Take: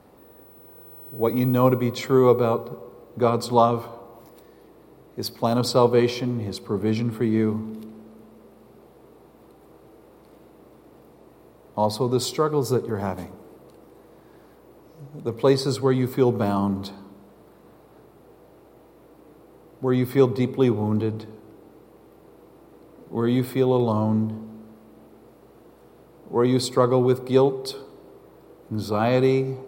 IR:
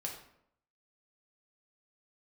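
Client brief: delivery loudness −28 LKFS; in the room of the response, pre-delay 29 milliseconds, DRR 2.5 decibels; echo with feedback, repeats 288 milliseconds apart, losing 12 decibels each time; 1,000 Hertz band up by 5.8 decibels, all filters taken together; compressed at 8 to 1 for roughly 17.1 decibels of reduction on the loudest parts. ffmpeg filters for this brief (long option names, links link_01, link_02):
-filter_complex "[0:a]equalizer=frequency=1000:width_type=o:gain=7,acompressor=threshold=-27dB:ratio=8,aecho=1:1:288|576|864:0.251|0.0628|0.0157,asplit=2[link_01][link_02];[1:a]atrim=start_sample=2205,adelay=29[link_03];[link_02][link_03]afir=irnorm=-1:irlink=0,volume=-2.5dB[link_04];[link_01][link_04]amix=inputs=2:normalize=0,volume=3dB"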